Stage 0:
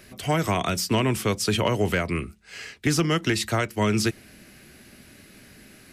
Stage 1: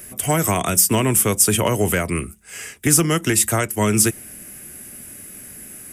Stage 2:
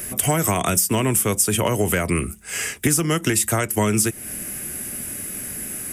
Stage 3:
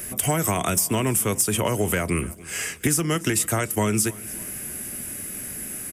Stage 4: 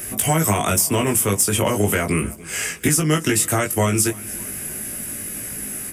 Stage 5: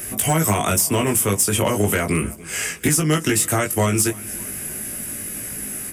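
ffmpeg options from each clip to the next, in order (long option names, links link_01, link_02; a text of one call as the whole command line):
ffmpeg -i in.wav -af "highshelf=frequency=6600:width_type=q:width=1.5:gain=13.5,bandreject=frequency=4200:width=6.7,volume=4dB" out.wav
ffmpeg -i in.wav -af "acompressor=threshold=-25dB:ratio=5,volume=7.5dB" out.wav
ffmpeg -i in.wav -filter_complex "[0:a]asplit=2[link_01][link_02];[link_02]aeval=exprs='(mod(2*val(0)+1,2)-1)/2':channel_layout=same,volume=-7dB[link_03];[link_01][link_03]amix=inputs=2:normalize=0,aecho=1:1:291|582|873:0.0891|0.041|0.0189,volume=-6dB" out.wav
ffmpeg -i in.wav -af "flanger=delay=18.5:depth=2.1:speed=0.39,volume=7dB" out.wav
ffmpeg -i in.wav -af "volume=10.5dB,asoftclip=hard,volume=-10.5dB" out.wav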